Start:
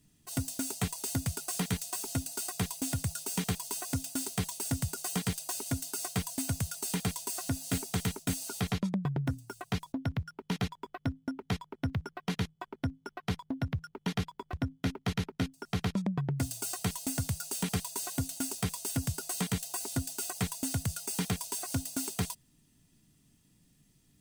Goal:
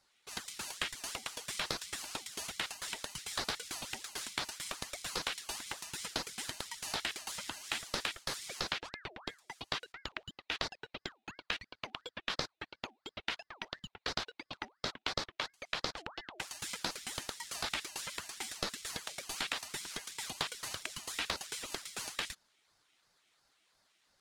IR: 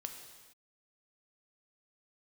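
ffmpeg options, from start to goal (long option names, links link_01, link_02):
-af "bandpass=frequency=2500:width_type=q:width=1.8:csg=0,aeval=exprs='val(0)*sin(2*PI*1200*n/s+1200*0.6/2.9*sin(2*PI*2.9*n/s))':channel_layout=same,volume=11dB"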